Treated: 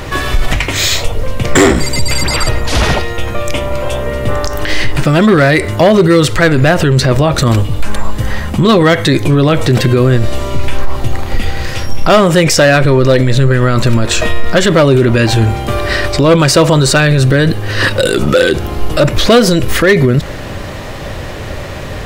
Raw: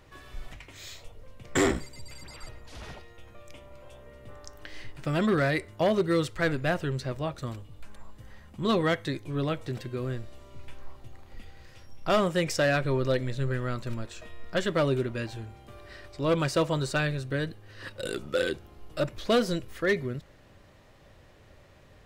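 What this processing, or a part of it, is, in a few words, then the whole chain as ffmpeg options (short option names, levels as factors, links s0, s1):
loud club master: -af "acompressor=threshold=0.0224:ratio=1.5,asoftclip=type=hard:threshold=0.0668,alimiter=level_in=47.3:limit=0.891:release=50:level=0:latency=1,volume=0.891"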